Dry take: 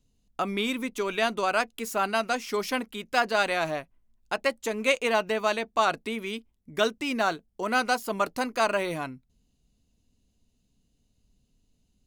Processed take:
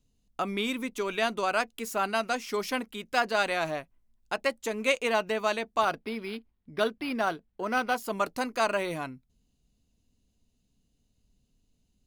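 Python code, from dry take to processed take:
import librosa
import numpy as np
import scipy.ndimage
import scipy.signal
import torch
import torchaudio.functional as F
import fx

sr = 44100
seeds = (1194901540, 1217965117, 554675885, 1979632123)

y = fx.resample_linear(x, sr, factor=6, at=(5.81, 7.96))
y = F.gain(torch.from_numpy(y), -2.0).numpy()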